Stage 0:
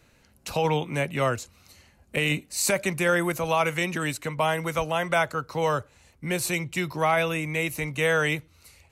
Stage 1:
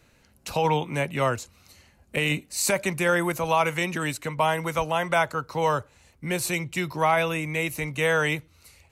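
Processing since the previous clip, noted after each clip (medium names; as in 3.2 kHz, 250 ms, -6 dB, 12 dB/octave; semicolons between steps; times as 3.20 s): dynamic bell 930 Hz, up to +5 dB, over -43 dBFS, Q 4.3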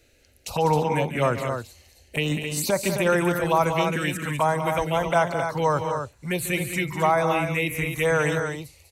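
touch-sensitive phaser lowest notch 170 Hz, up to 2.9 kHz, full sweep at -19.5 dBFS; multi-tap echo 143/197/265 ms -15/-9/-7 dB; trim +2.5 dB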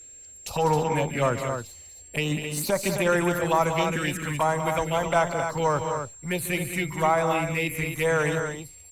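partial rectifier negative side -3 dB; whistle 7.5 kHz -44 dBFS; Opus 48 kbps 48 kHz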